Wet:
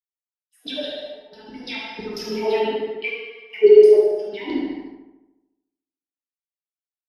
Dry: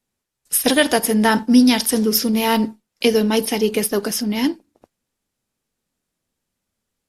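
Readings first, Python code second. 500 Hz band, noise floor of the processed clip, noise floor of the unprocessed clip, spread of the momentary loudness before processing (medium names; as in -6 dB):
+5.0 dB, under -85 dBFS, -80 dBFS, 8 LU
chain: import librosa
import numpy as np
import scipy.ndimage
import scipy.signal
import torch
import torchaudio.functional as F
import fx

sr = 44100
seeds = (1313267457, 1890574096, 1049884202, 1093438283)

y = fx.high_shelf(x, sr, hz=4200.0, db=12.0)
y = fx.hum_notches(y, sr, base_hz=50, count=6)
y = fx.transient(y, sr, attack_db=-3, sustain_db=3)
y = fx.leveller(y, sr, passes=2)
y = fx.filter_lfo_bandpass(y, sr, shape='saw_down', hz=6.0, low_hz=310.0, high_hz=4600.0, q=5.7)
y = fx.rider(y, sr, range_db=10, speed_s=2.0)
y = fx.step_gate(y, sr, bpm=68, pattern='xxxx..xx.x', floor_db=-24.0, edge_ms=4.5)
y = fx.echo_filtered(y, sr, ms=73, feedback_pct=73, hz=3700.0, wet_db=-3.0)
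y = fx.rev_gated(y, sr, seeds[0], gate_ms=450, shape='falling', drr_db=-5.5)
y = fx.spectral_expand(y, sr, expansion=1.5)
y = y * 10.0 ** (-2.5 / 20.0)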